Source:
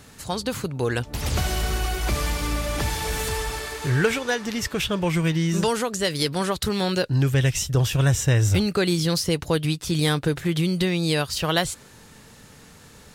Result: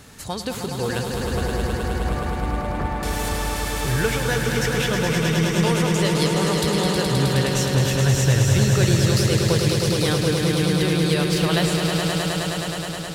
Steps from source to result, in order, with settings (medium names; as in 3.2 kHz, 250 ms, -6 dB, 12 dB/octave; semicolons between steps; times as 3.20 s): 1.14–3.03 s: Chebyshev low-pass 1.2 kHz, order 2; in parallel at -1 dB: compression, threshold -34 dBFS, peak gain reduction 18 dB; on the sum: echo with a slow build-up 105 ms, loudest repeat 5, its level -6 dB; trim -3.5 dB